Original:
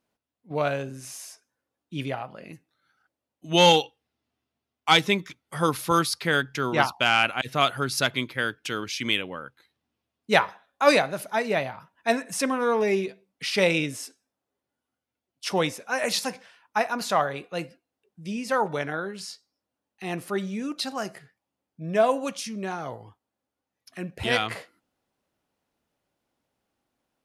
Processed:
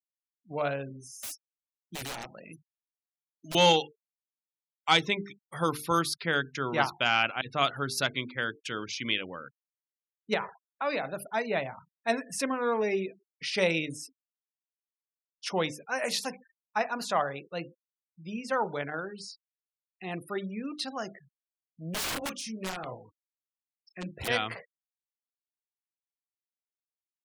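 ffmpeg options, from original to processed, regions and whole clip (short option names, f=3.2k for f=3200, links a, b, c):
-filter_complex "[0:a]asettb=1/sr,asplit=3[a][b][c];[a]atrim=end=1.234[d];[b]atrim=start=1.23:end=3.55,asetpts=PTS-STARTPTS,afade=t=in:d=0.004:c=qsin,afade=t=out:st=2.316:d=0.004:c=qsin,highpass=61,aemphasis=mode=production:type=75kf,aeval=exprs='(mod(21.1*val(0)+1,2)-1)/21.1':c=same[e];[c]atrim=start=3.546[f];[d][e]acrossfade=d=0.004:c1=hsin:c2=qsin[g];[g][f]acrossfade=d=0.004:c1=qsin:c2=hsin,asettb=1/sr,asplit=3[h][i][j];[h]atrim=end=10.344[k];[i]atrim=start=10.34:end=11.05,asetpts=PTS-STARTPTS,afade=t=in:d=0.004:c=qsin,afade=t=out:st=0.706:d=0.004:c=qsin,lowpass=4k,bandreject=f=50:t=h:w=6,bandreject=f=100:t=h:w=6,bandreject=f=150:t=h:w=6,acompressor=threshold=-23dB:ratio=3:attack=3.2:release=140:knee=1:detection=peak[l];[j]atrim=start=11.046[m];[k][l]acrossfade=d=0.004:c1=hsin:c2=qsin[n];[n][m]acrossfade=d=0.004:c1=qsin:c2=hsin,asettb=1/sr,asplit=3[o][p][q];[o]atrim=end=21.944[r];[p]atrim=start=21.94:end=24.28,asetpts=PTS-STARTPTS,afade=t=in:d=0.004:c=qsin,afade=t=out:st=2.336:d=0.004:c=qsin,bandreject=f=880:w=12,asplit=2[s][t];[t]adelay=32,volume=-6.5dB[u];[s][u]amix=inputs=2:normalize=0,atrim=end_sample=103194,aeval=exprs='(mod(14.1*val(0)+1,2)-1)/14.1':c=same[v];[q]atrim=start=24.276[w];[r][v]acrossfade=d=0.004:c1=hsin:c2=qsin[x];[x][w]acrossfade=d=0.004:c1=qsin:c2=hsin,bandreject=f=50:t=h:w=6,bandreject=f=100:t=h:w=6,bandreject=f=150:t=h:w=6,bandreject=f=200:t=h:w=6,bandreject=f=250:t=h:w=6,bandreject=f=300:t=h:w=6,bandreject=f=350:t=h:w=6,bandreject=f=400:t=h:w=6,bandreject=f=450:t=h:w=6,afftfilt=real='re*gte(hypot(re,im),0.0112)':imag='im*gte(hypot(re,im),0.0112)':win_size=1024:overlap=0.75,volume=-4.5dB"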